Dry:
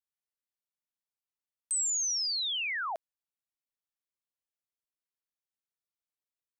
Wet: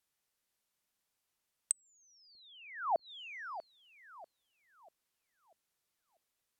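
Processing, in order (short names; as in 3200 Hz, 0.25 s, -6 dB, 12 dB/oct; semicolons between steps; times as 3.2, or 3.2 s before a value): darkening echo 0.642 s, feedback 50%, low-pass 890 Hz, level -16 dB; treble ducked by the level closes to 430 Hz, closed at -31 dBFS; gain +11 dB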